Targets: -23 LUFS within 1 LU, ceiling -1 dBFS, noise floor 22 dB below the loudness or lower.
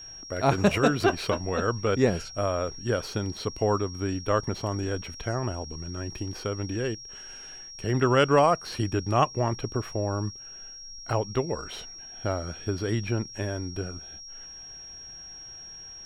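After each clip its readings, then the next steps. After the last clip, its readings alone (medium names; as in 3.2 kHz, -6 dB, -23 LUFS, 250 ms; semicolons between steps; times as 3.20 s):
steady tone 5.6 kHz; tone level -41 dBFS; loudness -28.0 LUFS; peak level -9.0 dBFS; loudness target -23.0 LUFS
-> band-stop 5.6 kHz, Q 30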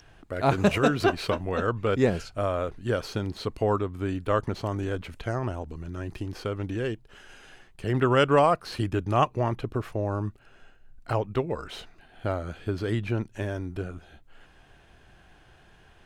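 steady tone not found; loudness -28.0 LUFS; peak level -9.0 dBFS; loudness target -23.0 LUFS
-> trim +5 dB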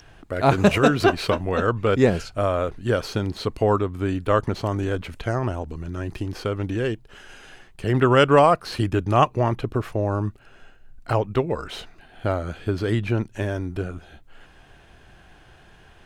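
loudness -23.0 LUFS; peak level -4.0 dBFS; noise floor -51 dBFS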